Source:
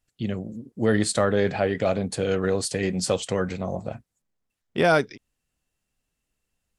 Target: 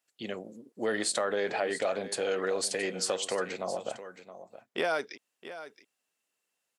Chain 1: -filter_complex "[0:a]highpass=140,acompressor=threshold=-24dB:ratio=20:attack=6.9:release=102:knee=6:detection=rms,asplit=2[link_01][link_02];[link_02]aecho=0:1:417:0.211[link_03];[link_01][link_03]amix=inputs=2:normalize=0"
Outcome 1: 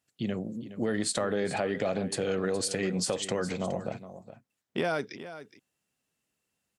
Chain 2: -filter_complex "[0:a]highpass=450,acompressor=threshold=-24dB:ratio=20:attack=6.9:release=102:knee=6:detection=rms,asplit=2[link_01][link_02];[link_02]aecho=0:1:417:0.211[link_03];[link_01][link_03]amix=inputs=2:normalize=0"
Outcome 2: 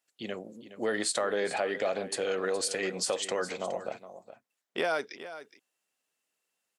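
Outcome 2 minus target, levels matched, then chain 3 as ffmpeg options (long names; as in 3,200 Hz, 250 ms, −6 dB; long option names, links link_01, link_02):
echo 253 ms early
-filter_complex "[0:a]highpass=450,acompressor=threshold=-24dB:ratio=20:attack=6.9:release=102:knee=6:detection=rms,asplit=2[link_01][link_02];[link_02]aecho=0:1:670:0.211[link_03];[link_01][link_03]amix=inputs=2:normalize=0"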